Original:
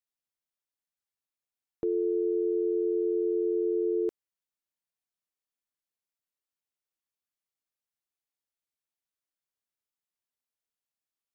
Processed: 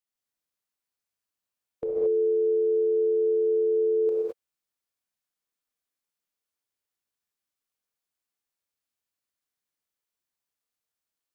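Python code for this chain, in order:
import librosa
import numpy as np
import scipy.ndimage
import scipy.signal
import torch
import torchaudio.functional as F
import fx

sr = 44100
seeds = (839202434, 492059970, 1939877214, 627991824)

y = fx.rev_gated(x, sr, seeds[0], gate_ms=240, shape='rising', drr_db=-1.5)
y = fx.formant_shift(y, sr, semitones=3)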